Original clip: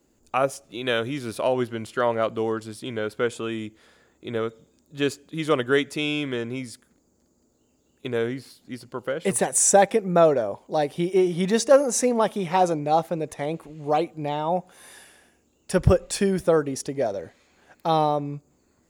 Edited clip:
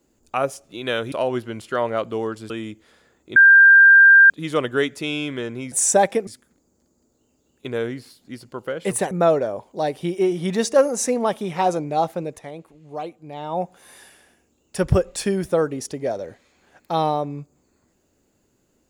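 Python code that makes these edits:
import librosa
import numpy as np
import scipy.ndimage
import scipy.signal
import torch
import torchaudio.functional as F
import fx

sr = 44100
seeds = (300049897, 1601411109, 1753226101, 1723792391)

y = fx.edit(x, sr, fx.cut(start_s=1.12, length_s=0.25),
    fx.cut(start_s=2.75, length_s=0.7),
    fx.bleep(start_s=4.31, length_s=0.94, hz=1590.0, db=-6.5),
    fx.move(start_s=9.51, length_s=0.55, to_s=6.67),
    fx.fade_down_up(start_s=13.17, length_s=1.39, db=-8.5, fade_s=0.29), tone=tone)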